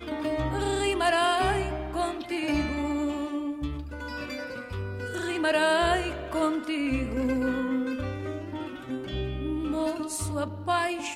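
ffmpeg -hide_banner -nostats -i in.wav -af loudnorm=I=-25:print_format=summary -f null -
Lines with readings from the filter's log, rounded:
Input Integrated:    -29.1 LUFS
Input True Peak:     -11.8 dBTP
Input LRA:             3.7 LU
Input Threshold:     -39.1 LUFS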